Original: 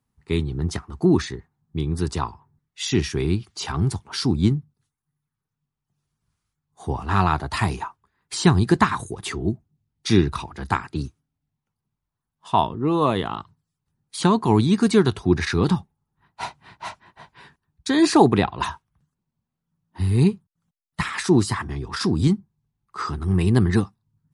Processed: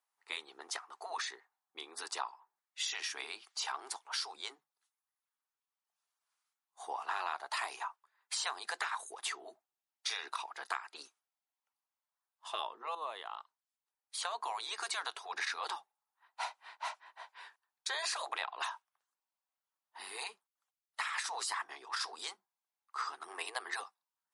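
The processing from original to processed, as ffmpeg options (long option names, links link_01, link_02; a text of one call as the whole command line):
ffmpeg -i in.wav -filter_complex "[0:a]asplit=2[link_01][link_02];[link_01]atrim=end=12.95,asetpts=PTS-STARTPTS,afade=type=out:start_time=12.946:duration=0.004:curve=hsin:silence=0.199526[link_03];[link_02]atrim=start=12.95,asetpts=PTS-STARTPTS,afade=type=in:duration=2.14:silence=0.199526[link_04];[link_03][link_04]concat=n=2:v=0:a=1,afftfilt=real='re*lt(hypot(re,im),0.398)':imag='im*lt(hypot(re,im),0.398)':win_size=1024:overlap=0.75,highpass=frequency=640:width=0.5412,highpass=frequency=640:width=1.3066,acompressor=threshold=-31dB:ratio=3,volume=-4dB" out.wav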